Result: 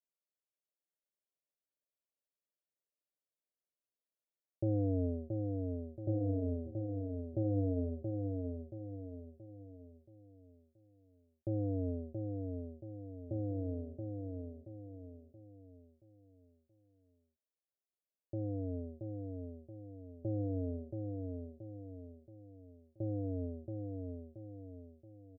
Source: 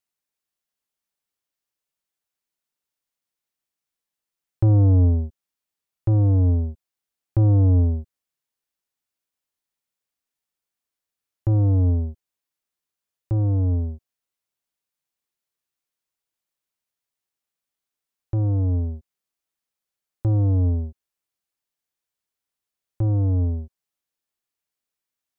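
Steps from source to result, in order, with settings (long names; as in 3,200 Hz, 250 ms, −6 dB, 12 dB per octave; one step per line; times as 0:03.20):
elliptic low-pass filter 630 Hz, stop band 40 dB
first difference
repeating echo 677 ms, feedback 43%, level −4.5 dB
level +17.5 dB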